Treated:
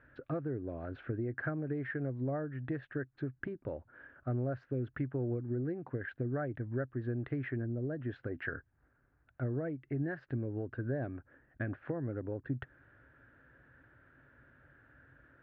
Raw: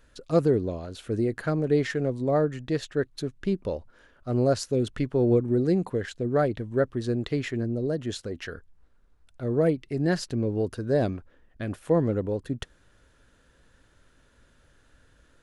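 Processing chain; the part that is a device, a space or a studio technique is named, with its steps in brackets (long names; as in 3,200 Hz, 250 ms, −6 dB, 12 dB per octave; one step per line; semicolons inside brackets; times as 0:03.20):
bass amplifier (downward compressor 5 to 1, threshold −34 dBFS, peak gain reduction 16.5 dB; loudspeaker in its box 80–2,000 Hz, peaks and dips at 130 Hz +7 dB, 190 Hz −10 dB, 280 Hz +3 dB, 460 Hz −5 dB, 1,000 Hz −5 dB, 1,600 Hz +7 dB)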